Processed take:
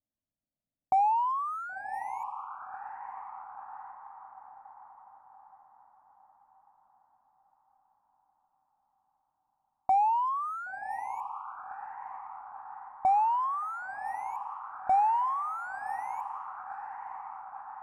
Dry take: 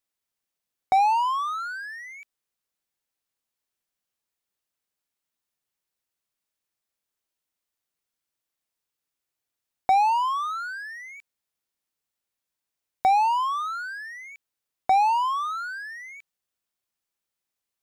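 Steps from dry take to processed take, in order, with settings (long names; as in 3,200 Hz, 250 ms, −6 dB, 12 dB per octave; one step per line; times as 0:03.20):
hollow resonant body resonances 1,900/3,100 Hz, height 6 dB
soft clipping −26.5 dBFS, distortion −7 dB
drawn EQ curve 290 Hz 0 dB, 430 Hz −15 dB, 610 Hz +4 dB, 4,000 Hz −30 dB, 8,600 Hz −2 dB
on a send: feedback delay with all-pass diffusion 1,047 ms, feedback 62%, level −10 dB
on the sum: low-pass that shuts in the quiet parts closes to 390 Hz, open at −37.5 dBFS
level +5.5 dB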